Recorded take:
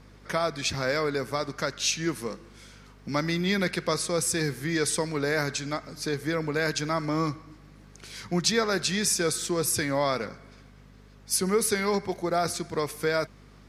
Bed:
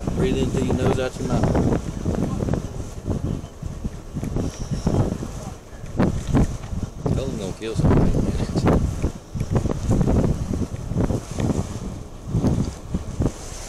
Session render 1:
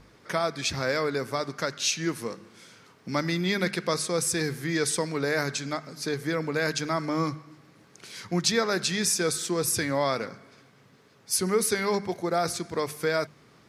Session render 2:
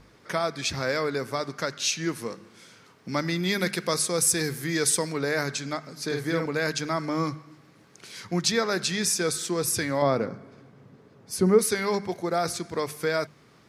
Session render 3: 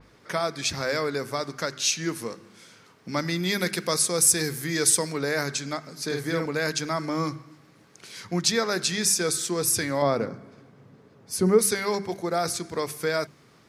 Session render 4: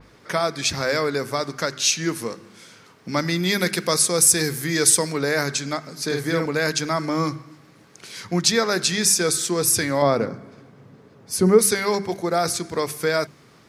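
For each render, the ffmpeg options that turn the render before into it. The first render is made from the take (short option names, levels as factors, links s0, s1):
-af "bandreject=f=50:t=h:w=4,bandreject=f=100:t=h:w=4,bandreject=f=150:t=h:w=4,bandreject=f=200:t=h:w=4,bandreject=f=250:t=h:w=4"
-filter_complex "[0:a]asettb=1/sr,asplit=3[s0][s1][s2];[s0]atrim=end=3.434[s3];[s1]atrim=start=3.43:end=5.13,asetpts=PTS-STARTPTS,afade=t=in:d=0.004:c=qsin,afade=t=out:st=1.696:d=0.004:c=qsin,highshelf=f=8100:g=11[s4];[s2]atrim=start=5.126[s5];[s3][s4]acrossfade=d=0.004:c1=hsin:c2=qsin[s6];[s6][s5]acrossfade=d=0.004:c1=qsin:c2=hsin,asettb=1/sr,asplit=3[s7][s8][s9];[s7]atrim=end=6.054[s10];[s8]atrim=start=6.05:end=6.46,asetpts=PTS-STARTPTS,afade=t=in:d=0.004:c=qsin,afade=t=out:st=0.406:d=0.004:c=qsin,asplit=2[s11][s12];[s12]adelay=48,volume=0.631[s13];[s11][s13]amix=inputs=2:normalize=0,atrim=end_sample=18081[s14];[s9]atrim=start=6.456[s15];[s10][s14]acrossfade=d=0.004:c1=hsin:c2=qsin[s16];[s16][s15]acrossfade=d=0.004:c1=qsin:c2=hsin,asettb=1/sr,asplit=3[s17][s18][s19];[s17]atrim=end=10.024[s20];[s18]atrim=start=10.02:end=11.59,asetpts=PTS-STARTPTS,afade=t=in:d=0.004:c=qsin,afade=t=out:st=1.566:d=0.004:c=qsin,tiltshelf=f=1200:g=8[s21];[s19]atrim=start=11.586[s22];[s20][s21]acrossfade=d=0.004:c1=hsin:c2=qsin[s23];[s23][s22]acrossfade=d=0.004:c1=qsin:c2=hsin"
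-af "bandreject=f=65.37:t=h:w=4,bandreject=f=130.74:t=h:w=4,bandreject=f=196.11:t=h:w=4,bandreject=f=261.48:t=h:w=4,bandreject=f=326.85:t=h:w=4,bandreject=f=392.22:t=h:w=4,adynamicequalizer=threshold=0.01:dfrequency=4800:dqfactor=0.7:tfrequency=4800:tqfactor=0.7:attack=5:release=100:ratio=0.375:range=2:mode=boostabove:tftype=highshelf"
-af "volume=1.68,alimiter=limit=0.708:level=0:latency=1"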